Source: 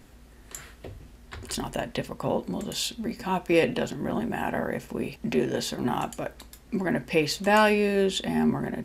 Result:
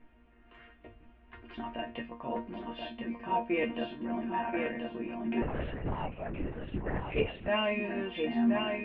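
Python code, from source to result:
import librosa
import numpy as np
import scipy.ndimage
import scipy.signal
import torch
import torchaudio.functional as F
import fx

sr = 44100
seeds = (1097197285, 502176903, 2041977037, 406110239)

y = scipy.signal.sosfilt(scipy.signal.ellip(4, 1.0, 80, 2800.0, 'lowpass', fs=sr, output='sos'), x)
y = fx.resonator_bank(y, sr, root=58, chord='sus4', decay_s=0.2)
y = fx.echo_feedback(y, sr, ms=1031, feedback_pct=24, wet_db=-4)
y = fx.lpc_vocoder(y, sr, seeds[0], excitation='whisper', order=8, at=(5.42, 7.48))
y = F.gain(torch.from_numpy(y), 8.0).numpy()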